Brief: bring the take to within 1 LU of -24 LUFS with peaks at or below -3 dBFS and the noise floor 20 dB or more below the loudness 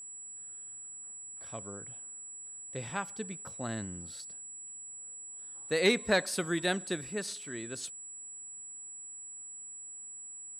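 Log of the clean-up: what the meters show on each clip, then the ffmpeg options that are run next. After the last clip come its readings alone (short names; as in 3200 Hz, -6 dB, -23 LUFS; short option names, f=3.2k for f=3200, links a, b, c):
steady tone 7800 Hz; tone level -43 dBFS; loudness -36.0 LUFS; peak -15.5 dBFS; loudness target -24.0 LUFS
-> -af "bandreject=f=7.8k:w=30"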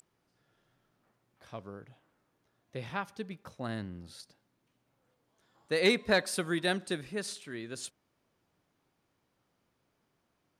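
steady tone none; loudness -33.0 LUFS; peak -16.0 dBFS; loudness target -24.0 LUFS
-> -af "volume=9dB"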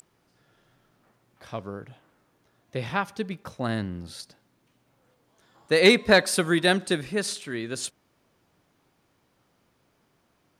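loudness -24.5 LUFS; peak -7.0 dBFS; noise floor -69 dBFS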